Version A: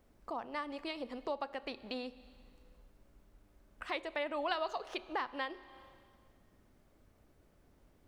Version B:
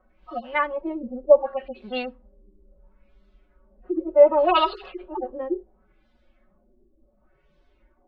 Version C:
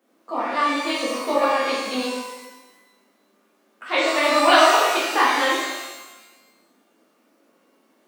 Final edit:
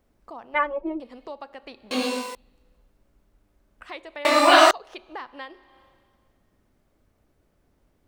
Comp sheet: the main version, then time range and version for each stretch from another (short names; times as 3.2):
A
0.54–1 from B
1.91–2.35 from C
4.25–4.71 from C